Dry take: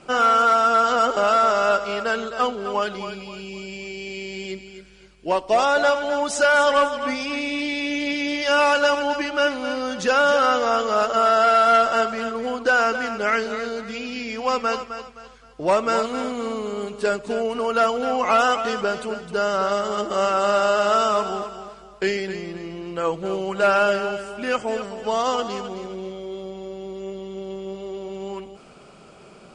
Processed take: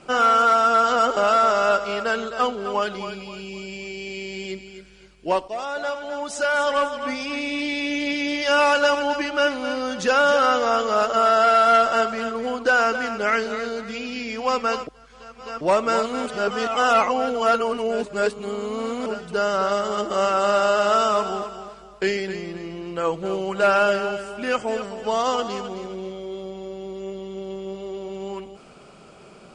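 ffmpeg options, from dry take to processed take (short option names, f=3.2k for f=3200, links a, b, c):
-filter_complex "[0:a]asplit=6[a][b][c][d][e][f];[a]atrim=end=5.48,asetpts=PTS-STARTPTS,afade=t=out:st=5.476:d=0.004:c=hsin:silence=0.237137[g];[b]atrim=start=5.48:end=14.872,asetpts=PTS-STARTPTS,afade=t=in:d=2.25:silence=0.237137[h];[c]atrim=start=14.868:end=15.612,asetpts=PTS-STARTPTS,areverse[i];[d]atrim=start=15.608:end=16.262[j];[e]atrim=start=16.258:end=19.062,asetpts=PTS-STARTPTS,areverse[k];[f]atrim=start=19.058[l];[g][h]concat=n=2:v=0:a=1[m];[m][i]acrossfade=d=0.004:c1=hsin:c2=hsin[n];[n][j]acrossfade=d=0.004:c1=hsin:c2=hsin[o];[o][k]acrossfade=d=0.004:c1=hsin:c2=hsin[p];[p][l]acrossfade=d=0.004:c1=hsin:c2=hsin"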